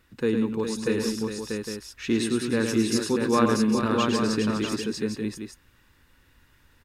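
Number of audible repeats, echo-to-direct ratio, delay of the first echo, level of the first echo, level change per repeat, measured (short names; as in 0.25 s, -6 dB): 5, 0.0 dB, 0.106 s, -6.0 dB, no steady repeat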